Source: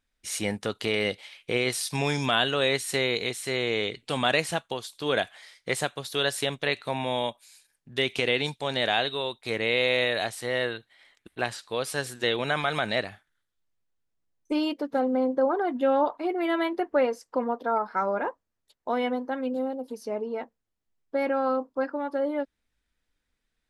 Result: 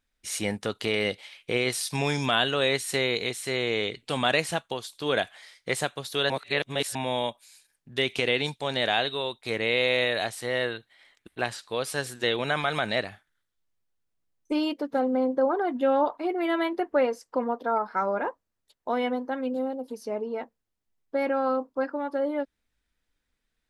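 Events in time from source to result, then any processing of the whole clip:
6.30–6.95 s: reverse

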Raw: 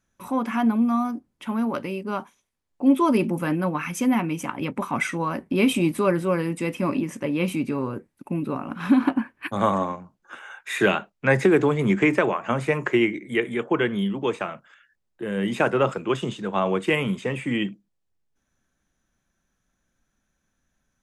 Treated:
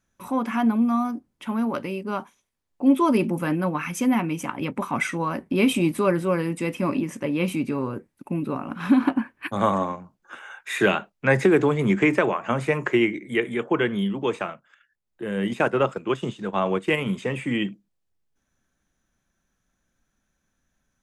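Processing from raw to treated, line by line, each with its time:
14.46–17.11 s: transient shaper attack -1 dB, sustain -7 dB

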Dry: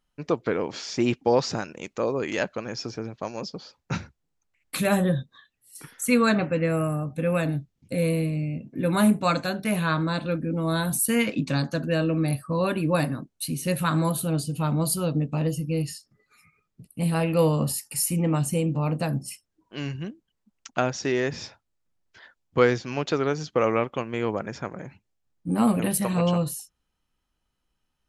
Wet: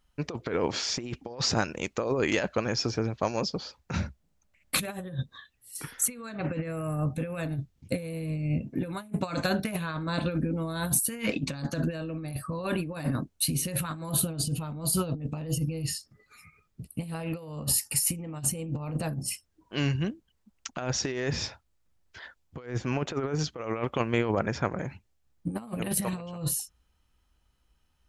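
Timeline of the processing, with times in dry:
3.98–4.77 s: small resonant body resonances 200/590 Hz, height 10 dB
22.66–23.39 s: peaking EQ 4.5 kHz -13.5 dB 1.1 oct
24.18–24.79 s: treble shelf 9.8 kHz -11 dB
whole clip: peaking EQ 63 Hz +11 dB 1.5 oct; compressor with a negative ratio -27 dBFS, ratio -0.5; peaking EQ 150 Hz -3 dB 2.8 oct

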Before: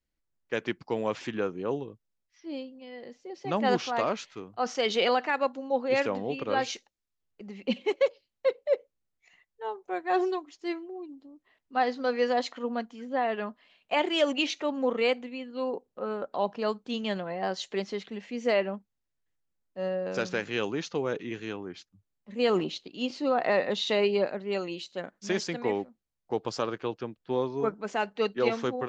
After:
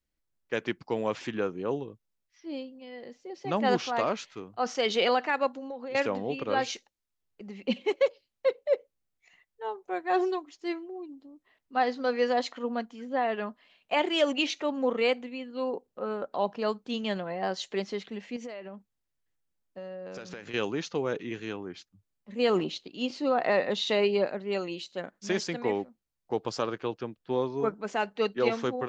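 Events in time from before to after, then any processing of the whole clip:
5.49–5.95 s: compression 12:1, threshold -34 dBFS
18.36–20.54 s: compression 16:1, threshold -36 dBFS

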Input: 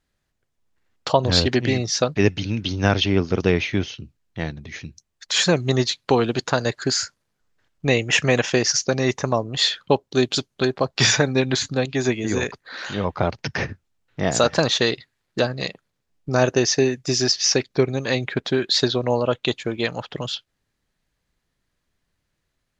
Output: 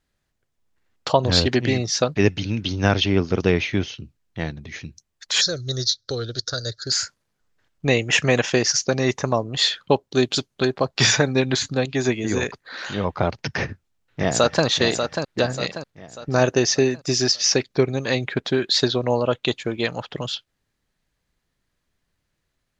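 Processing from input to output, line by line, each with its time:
5.41–6.92 s: FFT filter 110 Hz 0 dB, 190 Hz -17 dB, 550 Hz -7 dB, 940 Hz -29 dB, 1.4 kHz -4 dB, 2.6 kHz -26 dB, 3.7 kHz +2 dB, 5.7 kHz +9 dB, 8.6 kHz -18 dB
13.61–14.65 s: echo throw 590 ms, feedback 45%, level -6.5 dB

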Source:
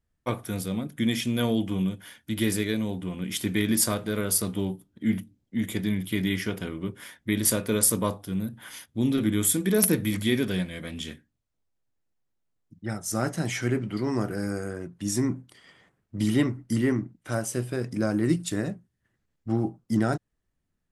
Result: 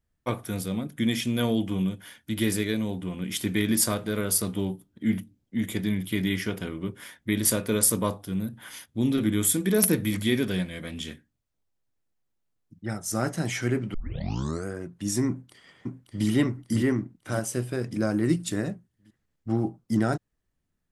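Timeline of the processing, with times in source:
13.94 s: tape start 0.72 s
15.28–16.25 s: echo throw 570 ms, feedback 45%, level -4 dB

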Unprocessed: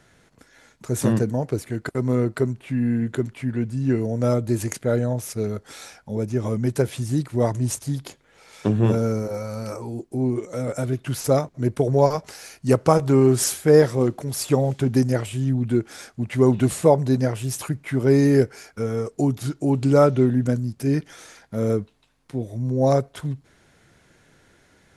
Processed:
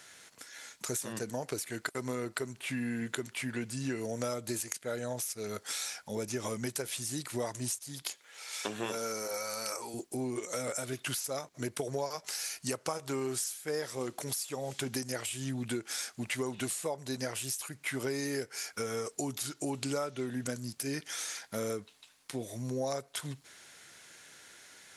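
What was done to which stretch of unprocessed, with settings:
8.02–9.94 s: high-pass 480 Hz 6 dB/octave
whole clip: tilt EQ +4.5 dB/octave; compression 10:1, threshold -31 dBFS; treble shelf 11 kHz -9.5 dB

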